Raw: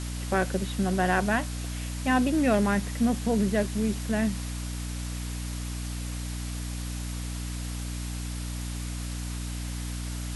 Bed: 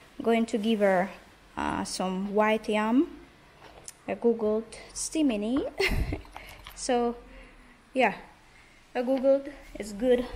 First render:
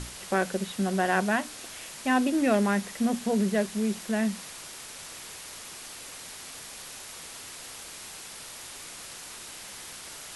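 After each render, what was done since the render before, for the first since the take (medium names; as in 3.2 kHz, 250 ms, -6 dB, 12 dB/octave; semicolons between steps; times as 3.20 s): hum notches 60/120/180/240/300 Hz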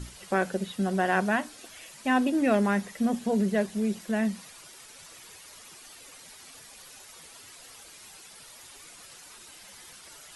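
noise reduction 10 dB, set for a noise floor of -43 dBFS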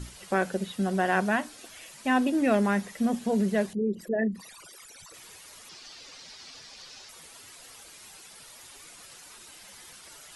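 3.73–5.14 s: resonances exaggerated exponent 3; 5.69–7.09 s: resonant low-pass 5 kHz, resonance Q 2.3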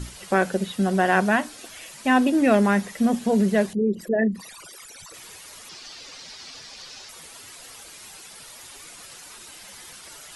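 trim +5.5 dB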